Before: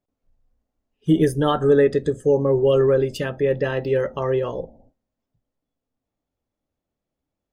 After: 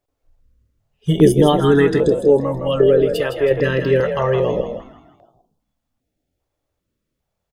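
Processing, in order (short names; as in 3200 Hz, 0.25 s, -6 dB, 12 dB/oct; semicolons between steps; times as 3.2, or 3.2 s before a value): 2.08–3.51 fifteen-band EQ 160 Hz -11 dB, 630 Hz -4 dB, 1600 Hz -3 dB, 6300 Hz -11 dB; frequency-shifting echo 0.161 s, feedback 42%, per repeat +41 Hz, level -8 dB; stepped notch 2.5 Hz 210–2000 Hz; gain +7 dB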